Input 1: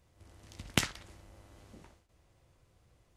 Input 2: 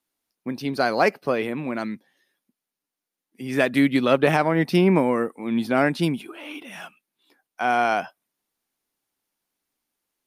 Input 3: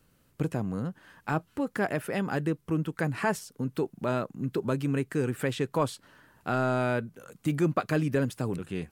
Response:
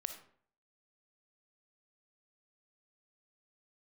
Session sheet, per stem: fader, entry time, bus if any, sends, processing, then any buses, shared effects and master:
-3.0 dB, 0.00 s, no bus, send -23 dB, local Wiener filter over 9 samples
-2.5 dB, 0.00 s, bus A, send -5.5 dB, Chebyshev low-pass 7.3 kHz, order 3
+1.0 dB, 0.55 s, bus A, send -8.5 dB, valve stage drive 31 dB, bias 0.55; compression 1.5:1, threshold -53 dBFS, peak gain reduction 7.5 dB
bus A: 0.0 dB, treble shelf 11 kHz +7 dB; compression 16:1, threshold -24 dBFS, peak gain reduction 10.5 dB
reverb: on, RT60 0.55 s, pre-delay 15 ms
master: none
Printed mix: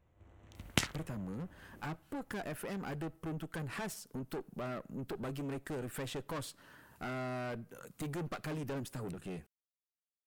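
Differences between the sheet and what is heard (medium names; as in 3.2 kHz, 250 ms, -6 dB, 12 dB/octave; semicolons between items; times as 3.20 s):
stem 2: muted; stem 3: send -8.5 dB -> -14.5 dB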